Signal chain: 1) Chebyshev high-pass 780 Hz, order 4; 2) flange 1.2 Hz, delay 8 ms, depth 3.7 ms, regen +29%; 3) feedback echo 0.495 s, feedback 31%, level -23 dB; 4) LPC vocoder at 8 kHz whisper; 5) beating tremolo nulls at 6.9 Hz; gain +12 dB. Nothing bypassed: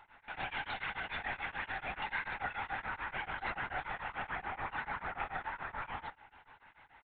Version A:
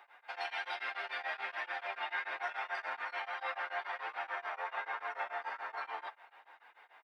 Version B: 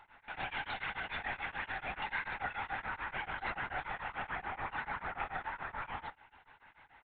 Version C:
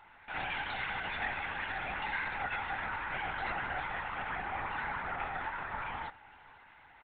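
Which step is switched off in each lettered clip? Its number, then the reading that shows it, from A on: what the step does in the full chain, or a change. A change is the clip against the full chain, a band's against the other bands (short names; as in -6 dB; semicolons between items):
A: 4, 250 Hz band -14.0 dB; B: 3, momentary loudness spread change -1 LU; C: 5, momentary loudness spread change +1 LU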